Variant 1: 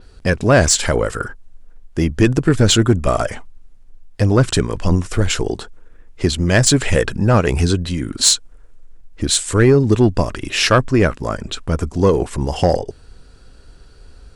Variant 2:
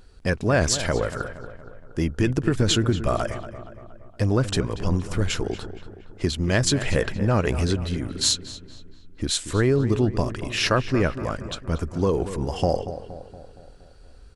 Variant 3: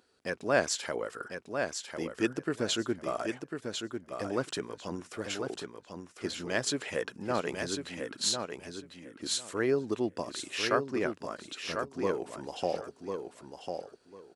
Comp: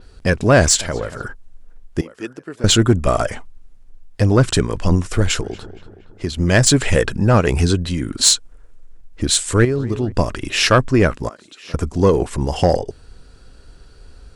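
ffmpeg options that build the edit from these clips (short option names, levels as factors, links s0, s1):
-filter_complex "[1:a]asplit=3[s0][s1][s2];[2:a]asplit=2[s3][s4];[0:a]asplit=6[s5][s6][s7][s8][s9][s10];[s5]atrim=end=0.812[s11];[s0]atrim=start=0.808:end=1.242[s12];[s6]atrim=start=1.238:end=2.012[s13];[s3]atrim=start=2.008:end=2.642[s14];[s7]atrim=start=2.638:end=5.412[s15];[s1]atrim=start=5.408:end=6.372[s16];[s8]atrim=start=6.368:end=9.652[s17];[s2]atrim=start=9.648:end=10.122[s18];[s9]atrim=start=10.118:end=11.292[s19];[s4]atrim=start=11.288:end=11.742[s20];[s10]atrim=start=11.738[s21];[s11][s12]acrossfade=d=0.004:c1=hsin:c2=hsin[s22];[s22][s13]acrossfade=d=0.004:c1=hsin:c2=hsin[s23];[s23][s14]acrossfade=d=0.004:c1=hsin:c2=hsin[s24];[s24][s15]acrossfade=d=0.004:c1=hsin:c2=hsin[s25];[s25][s16]acrossfade=d=0.004:c1=hsin:c2=hsin[s26];[s26][s17]acrossfade=d=0.004:c1=hsin:c2=hsin[s27];[s27][s18]acrossfade=d=0.004:c1=hsin:c2=hsin[s28];[s28][s19]acrossfade=d=0.004:c1=hsin:c2=hsin[s29];[s29][s20]acrossfade=d=0.004:c1=hsin:c2=hsin[s30];[s30][s21]acrossfade=d=0.004:c1=hsin:c2=hsin"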